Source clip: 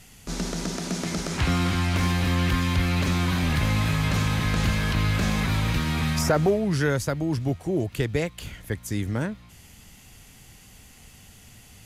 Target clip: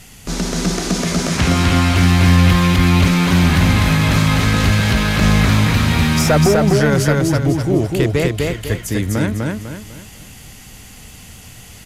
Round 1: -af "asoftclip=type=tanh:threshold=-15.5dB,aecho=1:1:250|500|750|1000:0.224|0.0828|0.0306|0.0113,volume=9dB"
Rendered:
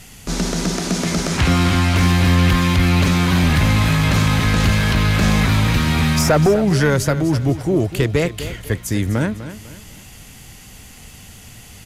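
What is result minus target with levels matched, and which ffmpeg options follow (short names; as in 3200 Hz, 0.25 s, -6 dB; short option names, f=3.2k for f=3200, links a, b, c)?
echo-to-direct -10.5 dB
-af "asoftclip=type=tanh:threshold=-15.5dB,aecho=1:1:250|500|750|1000|1250:0.75|0.277|0.103|0.038|0.0141,volume=9dB"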